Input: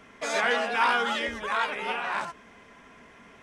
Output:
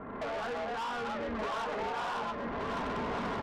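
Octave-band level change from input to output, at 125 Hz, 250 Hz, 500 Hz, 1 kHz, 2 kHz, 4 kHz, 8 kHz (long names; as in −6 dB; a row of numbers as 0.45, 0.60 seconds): can't be measured, +2.0 dB, −3.0 dB, −5.5 dB, −11.5 dB, −10.5 dB, −13.0 dB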